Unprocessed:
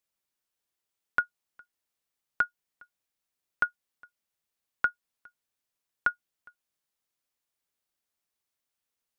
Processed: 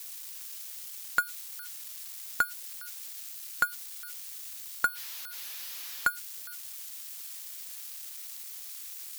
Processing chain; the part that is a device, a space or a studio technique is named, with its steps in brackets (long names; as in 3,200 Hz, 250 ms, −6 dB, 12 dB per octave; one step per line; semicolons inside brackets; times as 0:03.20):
0:04.85–0:06.07: high-frequency loss of the air 54 metres
budget class-D amplifier (gap after every zero crossing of 0.072 ms; spike at every zero crossing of −28 dBFS)